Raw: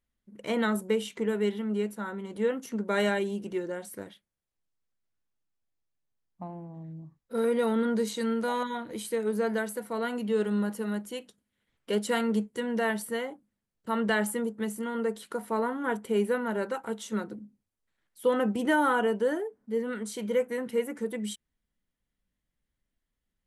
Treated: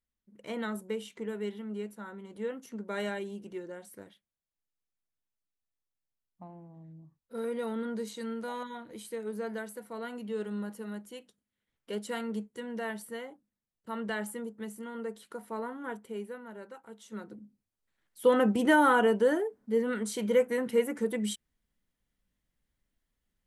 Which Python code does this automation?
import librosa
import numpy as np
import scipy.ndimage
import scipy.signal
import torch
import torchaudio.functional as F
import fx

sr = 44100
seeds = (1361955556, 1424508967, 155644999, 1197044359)

y = fx.gain(x, sr, db=fx.line((15.85, -8.0), (16.38, -15.0), (16.91, -15.0), (17.41, -5.0), (18.28, 2.0)))